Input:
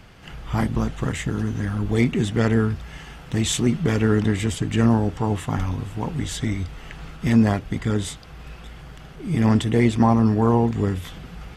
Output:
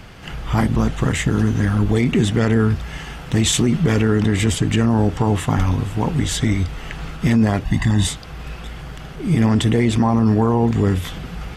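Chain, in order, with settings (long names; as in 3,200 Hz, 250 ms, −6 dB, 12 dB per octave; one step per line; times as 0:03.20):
0:07.65–0:08.07: comb filter 1.1 ms, depth 95%
boost into a limiter +14.5 dB
level −7 dB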